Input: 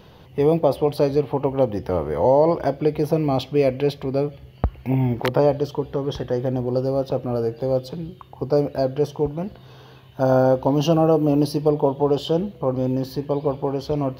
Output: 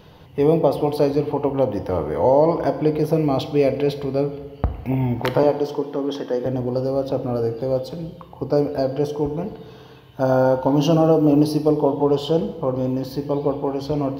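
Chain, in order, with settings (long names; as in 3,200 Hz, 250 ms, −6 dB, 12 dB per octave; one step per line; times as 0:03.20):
0:05.43–0:06.46: high-pass filter 200 Hz 24 dB per octave
feedback delay network reverb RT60 1.4 s, low-frequency decay 0.95×, high-frequency decay 0.65×, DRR 8.5 dB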